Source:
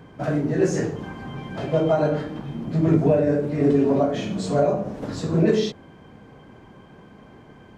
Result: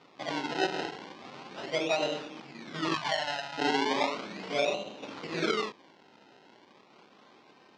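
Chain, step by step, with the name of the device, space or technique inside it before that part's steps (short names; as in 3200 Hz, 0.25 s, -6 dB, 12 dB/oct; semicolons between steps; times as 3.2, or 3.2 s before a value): circuit-bent sampling toy (decimation with a swept rate 26×, swing 100% 0.36 Hz; speaker cabinet 440–5100 Hz, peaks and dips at 460 Hz -4 dB, 650 Hz -4 dB, 1700 Hz -5 dB); 2.94–3.58 EQ curve 120 Hz 0 dB, 420 Hz -23 dB, 670 Hz -1 dB; gain -4 dB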